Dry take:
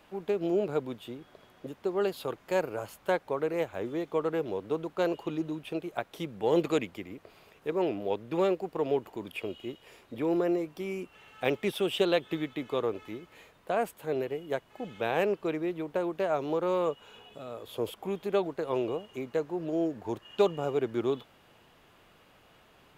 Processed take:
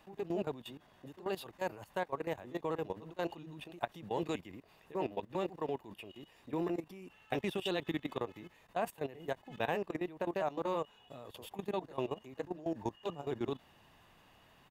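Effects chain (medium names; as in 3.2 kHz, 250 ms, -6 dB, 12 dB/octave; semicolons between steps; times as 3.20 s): granular stretch 0.64×, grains 166 ms; level held to a coarse grid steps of 16 dB; comb 1.1 ms, depth 37%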